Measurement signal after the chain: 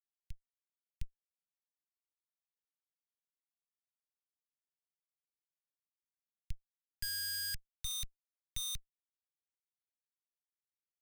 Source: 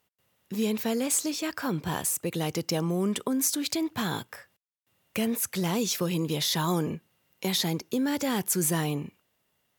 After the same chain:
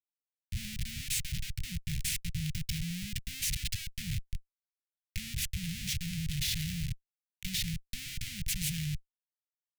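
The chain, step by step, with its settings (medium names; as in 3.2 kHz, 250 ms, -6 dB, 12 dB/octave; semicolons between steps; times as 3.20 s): formants flattened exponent 0.6; Schmitt trigger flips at -26.5 dBFS; inverse Chebyshev band-stop 310–1100 Hz, stop band 50 dB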